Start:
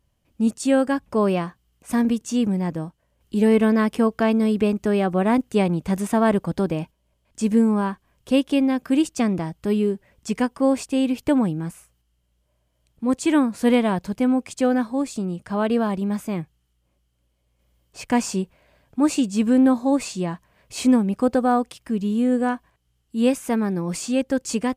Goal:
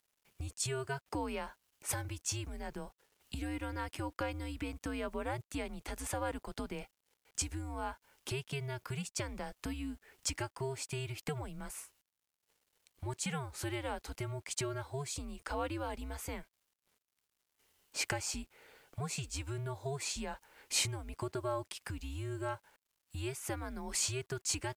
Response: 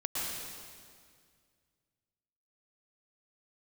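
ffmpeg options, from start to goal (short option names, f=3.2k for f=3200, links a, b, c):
-af "acompressor=threshold=-30dB:ratio=8,highpass=f=980:p=1,afreqshift=-140,acrusher=bits=11:mix=0:aa=0.000001,volume=3dB" -ar 44100 -c:a libvorbis -b:a 192k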